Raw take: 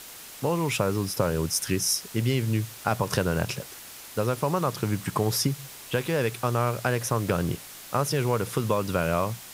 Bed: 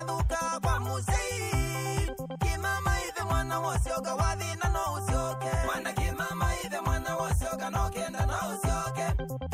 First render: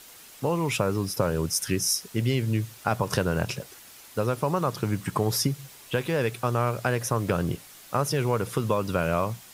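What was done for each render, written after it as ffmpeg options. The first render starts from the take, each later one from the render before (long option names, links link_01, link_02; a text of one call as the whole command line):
ffmpeg -i in.wav -af "afftdn=noise_reduction=6:noise_floor=-44" out.wav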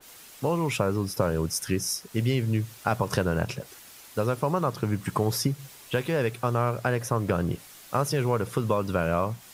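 ffmpeg -i in.wav -af "adynamicequalizer=threshold=0.00891:dfrequency=2200:dqfactor=0.7:tfrequency=2200:tqfactor=0.7:attack=5:release=100:ratio=0.375:range=3:mode=cutabove:tftype=highshelf" out.wav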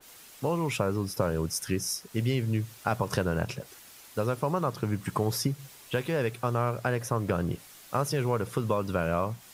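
ffmpeg -i in.wav -af "volume=-2.5dB" out.wav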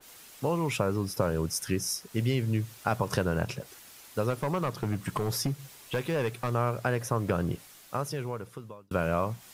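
ffmpeg -i in.wav -filter_complex "[0:a]asettb=1/sr,asplit=3[link_01][link_02][link_03];[link_01]atrim=end=4.304[link_04];[link_02]atrim=start=4.3:end=6.52,asetpts=PTS-STARTPTS,afade=type=in:duration=0.004:curve=qsin,afade=type=out:start_time=2.216:duration=0.004:curve=qsin,asoftclip=type=hard:threshold=-23.5dB[link_05];[link_03]atrim=start=6.516[link_06];[link_04][link_05]acrossfade=duration=0.004:curve1=hsin:curve2=qsin[link_07];[link_07][link_06]acrossfade=duration=0.004:curve1=qsin:curve2=hsin,asplit=2[link_08][link_09];[link_08]atrim=end=8.91,asetpts=PTS-STARTPTS,afade=type=out:start_time=7.49:duration=1.42[link_10];[link_09]atrim=start=8.91,asetpts=PTS-STARTPTS,afade=type=in:duration=0.004:curve=hsin[link_11];[link_10][link_11]concat=n=2:v=0:a=1" out.wav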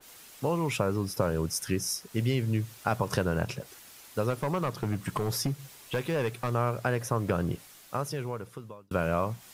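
ffmpeg -i in.wav -af anull out.wav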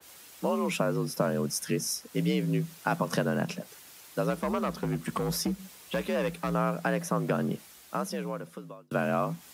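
ffmpeg -i in.wav -af "afreqshift=52" out.wav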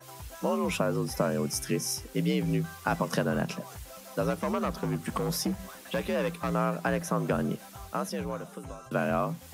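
ffmpeg -i in.wav -i bed.wav -filter_complex "[1:a]volume=-16.5dB[link_01];[0:a][link_01]amix=inputs=2:normalize=0" out.wav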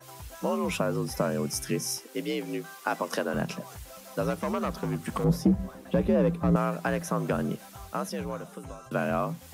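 ffmpeg -i in.wav -filter_complex "[0:a]asettb=1/sr,asplit=3[link_01][link_02][link_03];[link_01]atrim=end=1.974[link_04];[link_02]atrim=start=1.97:end=3.34,asetpts=PTS-STARTPTS,afade=type=in:duration=0.004:curve=qsin,afade=type=out:start_time=1.366:duration=0.004:curve=qsin,highpass=frequency=250:width=0.5412,highpass=frequency=250:width=1.3066[link_05];[link_03]atrim=start=3.336[link_06];[link_04][link_05]acrossfade=duration=0.004:curve1=hsin:curve2=qsin[link_07];[link_07][link_06]acrossfade=duration=0.004:curve1=qsin:curve2=hsin,asettb=1/sr,asplit=3[link_08][link_09][link_10];[link_08]atrim=end=5.244[link_11];[link_09]atrim=start=5.24:end=6.56,asetpts=PTS-STARTPTS,afade=type=in:duration=0.004:curve=qsin,afade=type=out:start_time=1.316:duration=0.004:curve=qsin,tiltshelf=frequency=910:gain=10[link_12];[link_10]atrim=start=6.556[link_13];[link_11][link_12]acrossfade=duration=0.004:curve1=hsin:curve2=qsin[link_14];[link_14][link_13]acrossfade=duration=0.004:curve1=qsin:curve2=hsin" out.wav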